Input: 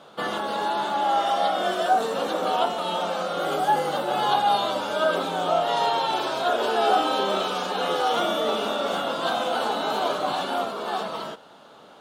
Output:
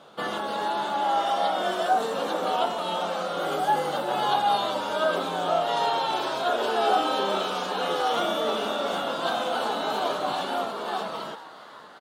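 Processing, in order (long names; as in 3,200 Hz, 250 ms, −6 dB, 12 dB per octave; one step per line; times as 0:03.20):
on a send: echo with shifted repeats 407 ms, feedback 62%, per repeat +120 Hz, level −16.5 dB
on the sum: level −2 dB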